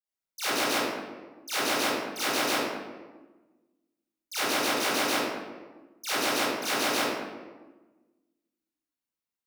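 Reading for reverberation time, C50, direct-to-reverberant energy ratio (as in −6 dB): 1.3 s, −6.5 dB, −15.0 dB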